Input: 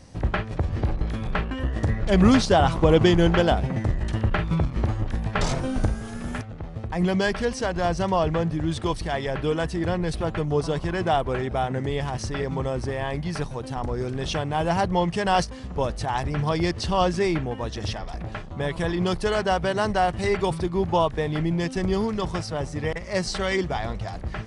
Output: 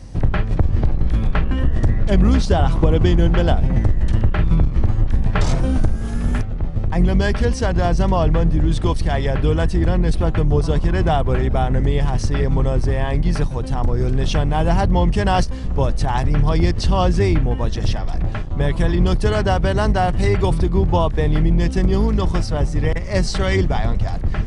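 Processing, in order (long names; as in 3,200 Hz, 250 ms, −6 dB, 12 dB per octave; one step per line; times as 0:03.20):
sub-octave generator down 2 octaves, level +2 dB
low-shelf EQ 190 Hz +7.5 dB
downward compressor 4 to 1, threshold −15 dBFS, peak gain reduction 9.5 dB
level +3.5 dB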